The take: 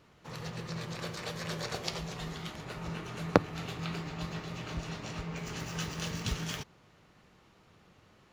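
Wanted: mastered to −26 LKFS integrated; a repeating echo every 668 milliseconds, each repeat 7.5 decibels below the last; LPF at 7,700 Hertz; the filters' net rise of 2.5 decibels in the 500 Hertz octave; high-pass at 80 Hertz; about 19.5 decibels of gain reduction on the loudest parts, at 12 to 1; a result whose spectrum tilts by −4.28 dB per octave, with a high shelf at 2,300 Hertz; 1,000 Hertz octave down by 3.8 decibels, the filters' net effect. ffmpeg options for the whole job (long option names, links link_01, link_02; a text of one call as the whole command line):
ffmpeg -i in.wav -af "highpass=80,lowpass=7700,equalizer=frequency=500:width_type=o:gain=4.5,equalizer=frequency=1000:width_type=o:gain=-7.5,highshelf=frequency=2300:gain=4,acompressor=threshold=-39dB:ratio=12,aecho=1:1:668|1336|2004|2672|3340:0.422|0.177|0.0744|0.0312|0.0131,volume=16.5dB" out.wav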